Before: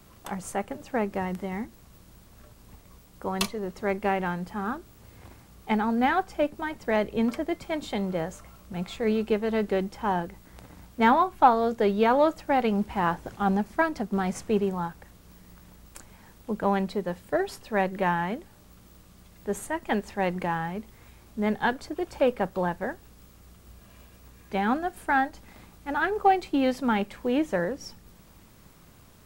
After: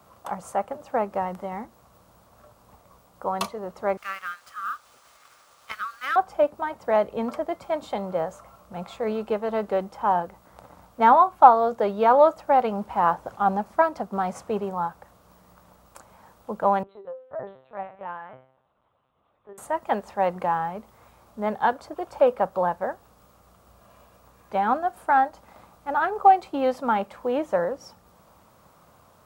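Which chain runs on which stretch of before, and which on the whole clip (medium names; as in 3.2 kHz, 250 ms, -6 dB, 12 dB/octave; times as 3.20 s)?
3.97–6.16 s: brick-wall FIR high-pass 1.1 kHz + treble shelf 3.8 kHz +11.5 dB + sliding maximum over 3 samples
16.83–19.58 s: high-pass 100 Hz + feedback comb 130 Hz, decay 0.48 s, mix 90% + LPC vocoder at 8 kHz pitch kept
whole clip: high-pass 64 Hz; high-order bell 830 Hz +11 dB; trim -5 dB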